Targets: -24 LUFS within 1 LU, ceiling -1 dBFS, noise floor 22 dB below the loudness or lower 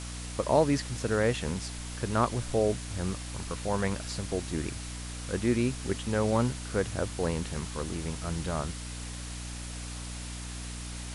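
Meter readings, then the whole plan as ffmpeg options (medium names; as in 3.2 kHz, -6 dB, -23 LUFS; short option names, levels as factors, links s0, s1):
hum 60 Hz; highest harmonic 300 Hz; hum level -37 dBFS; noise floor -39 dBFS; noise floor target -54 dBFS; loudness -31.5 LUFS; peak level -11.5 dBFS; loudness target -24.0 LUFS
-> -af "bandreject=f=60:t=h:w=4,bandreject=f=120:t=h:w=4,bandreject=f=180:t=h:w=4,bandreject=f=240:t=h:w=4,bandreject=f=300:t=h:w=4"
-af "afftdn=nr=15:nf=-39"
-af "volume=2.37"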